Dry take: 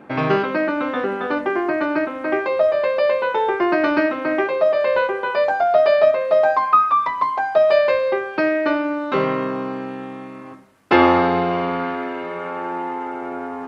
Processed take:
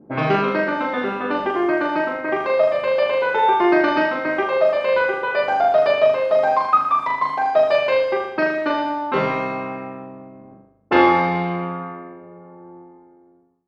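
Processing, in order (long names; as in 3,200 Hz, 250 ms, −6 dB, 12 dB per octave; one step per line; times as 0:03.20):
fade-out on the ending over 3.72 s
low-pass that shuts in the quiet parts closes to 310 Hz, open at −16.5 dBFS
flutter between parallel walls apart 6.8 metres, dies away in 0.78 s
level −1 dB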